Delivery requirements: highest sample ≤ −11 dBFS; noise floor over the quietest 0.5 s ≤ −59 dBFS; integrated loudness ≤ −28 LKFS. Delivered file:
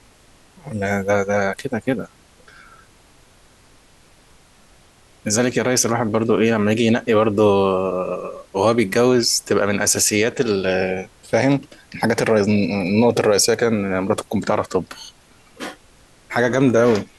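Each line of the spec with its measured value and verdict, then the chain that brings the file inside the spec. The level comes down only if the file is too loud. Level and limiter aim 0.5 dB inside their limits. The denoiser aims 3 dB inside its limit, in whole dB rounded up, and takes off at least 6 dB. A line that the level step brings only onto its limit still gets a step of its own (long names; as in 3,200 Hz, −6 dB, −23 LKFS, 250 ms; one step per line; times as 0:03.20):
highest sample −5.5 dBFS: out of spec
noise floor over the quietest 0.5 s −51 dBFS: out of spec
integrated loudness −18.5 LKFS: out of spec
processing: level −10 dB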